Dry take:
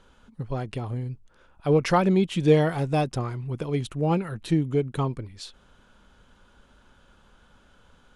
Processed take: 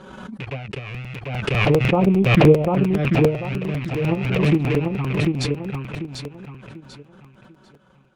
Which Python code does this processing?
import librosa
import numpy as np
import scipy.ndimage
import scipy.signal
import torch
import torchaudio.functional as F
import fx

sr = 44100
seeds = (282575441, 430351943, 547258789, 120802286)

p1 = fx.rattle_buzz(x, sr, strikes_db=-32.0, level_db=-16.0)
p2 = fx.level_steps(p1, sr, step_db=20)
p3 = p1 + (p2 * librosa.db_to_amplitude(-2.0))
p4 = scipy.signal.sosfilt(scipy.signal.butter(2, 140.0, 'highpass', fs=sr, output='sos'), p3)
p5 = fx.low_shelf(p4, sr, hz=210.0, db=5.5)
p6 = fx.doubler(p5, sr, ms=15.0, db=-10.0)
p7 = fx.env_flanger(p6, sr, rest_ms=5.5, full_db=-13.5)
p8 = fx.transient(p7, sr, attack_db=5, sustain_db=-11)
p9 = fx.env_lowpass_down(p8, sr, base_hz=1500.0, full_db=-14.5)
p10 = fx.high_shelf(p9, sr, hz=2100.0, db=-10.0)
p11 = p10 + fx.echo_feedback(p10, sr, ms=743, feedback_pct=33, wet_db=-3, dry=0)
p12 = fx.buffer_crackle(p11, sr, first_s=0.94, period_s=0.1, block=256, kind='repeat')
p13 = fx.pre_swell(p12, sr, db_per_s=32.0)
y = p13 * librosa.db_to_amplitude(-4.5)